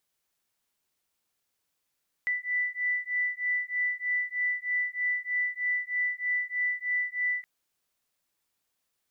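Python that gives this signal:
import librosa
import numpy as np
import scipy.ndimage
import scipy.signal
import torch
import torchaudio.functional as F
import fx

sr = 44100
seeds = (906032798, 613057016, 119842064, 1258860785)

y = fx.two_tone_beats(sr, length_s=5.17, hz=1980.0, beat_hz=3.2, level_db=-30.0)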